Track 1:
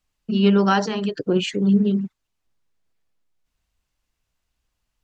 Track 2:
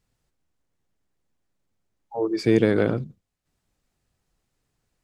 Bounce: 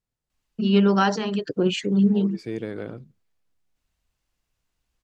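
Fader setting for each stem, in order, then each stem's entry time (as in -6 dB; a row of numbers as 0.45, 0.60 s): -1.5, -12.5 dB; 0.30, 0.00 s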